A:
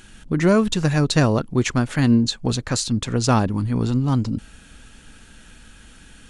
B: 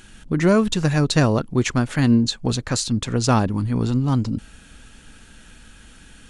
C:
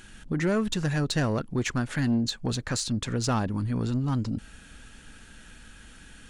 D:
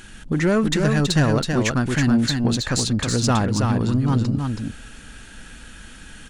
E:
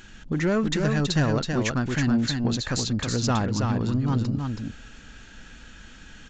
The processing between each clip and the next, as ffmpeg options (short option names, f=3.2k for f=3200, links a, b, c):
-af anull
-filter_complex "[0:a]equalizer=f=1.7k:t=o:w=0.58:g=3,asplit=2[a][b];[b]acompressor=threshold=-24dB:ratio=6,volume=-1.5dB[c];[a][c]amix=inputs=2:normalize=0,asoftclip=type=tanh:threshold=-9.5dB,volume=-8.5dB"
-af "aecho=1:1:325:0.596,volume=6.5dB"
-af "aresample=16000,aresample=44100,volume=-4.5dB"